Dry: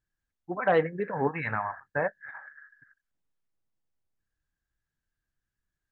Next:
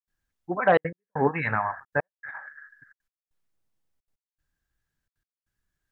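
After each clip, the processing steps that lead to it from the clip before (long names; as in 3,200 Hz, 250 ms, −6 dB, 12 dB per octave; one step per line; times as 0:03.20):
gate pattern ".xxxxxxxxx.x.." 195 BPM −60 dB
level +4.5 dB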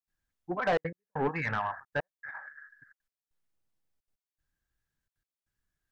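soft clipping −18 dBFS, distortion −10 dB
level −3.5 dB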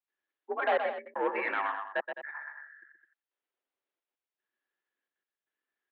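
single-sideband voice off tune +63 Hz 260–3,500 Hz
multi-tap delay 124/211 ms −7/−12.5 dB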